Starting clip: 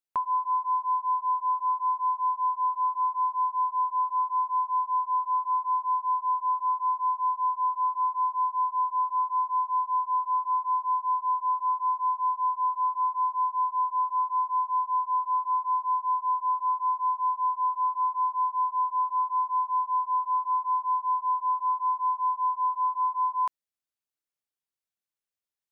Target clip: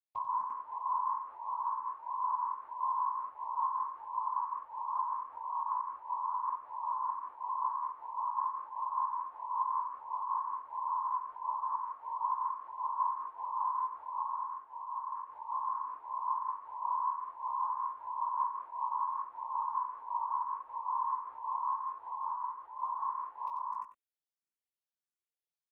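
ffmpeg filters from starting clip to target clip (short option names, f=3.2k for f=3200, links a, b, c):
-filter_complex "[0:a]asettb=1/sr,asplit=3[a][b][c];[a]atrim=end=14.224[d];[b]atrim=start=14.22:end=15.16,asetpts=PTS-STARTPTS,afade=t=in:d=0.004:c=qsin,afade=t=out:st=0.936:d=0.004:c=qsin,acompressor=threshold=-30dB:ratio=6[e];[c]atrim=start=15.156[f];[d][e]acrossfade=d=0.004:c1=hsin:c2=qsin[g];[g][f]acrossfade=d=0.004:c1=qsin:c2=hsin,asettb=1/sr,asplit=3[h][i][j];[h]atrim=end=22.084[k];[i]atrim=start=22.08:end=22.74,asetpts=PTS-STARTPTS,afade=t=in:d=0.004:c=qsin,afade=t=out:st=0.656:d=0.004:c=qsin,lowpass=1k[l];[j]atrim=start=22.736[m];[k][l]acrossfade=d=0.004:c1=hsin:c2=qsin[n];[n][m]acrossfade=d=0.004:c1=qsin:c2=hsin,afftfilt=real='hypot(re,im)*cos(2*PI*random(0))':imag='hypot(re,im)*sin(2*PI*random(1))':win_size=512:overlap=0.75,flanger=delay=18.5:depth=5.9:speed=0.25,aecho=1:1:91|254|347|442:0.398|0.531|0.596|0.168,asplit=2[o][p];[p]afreqshift=1.5[q];[o][q]amix=inputs=2:normalize=1"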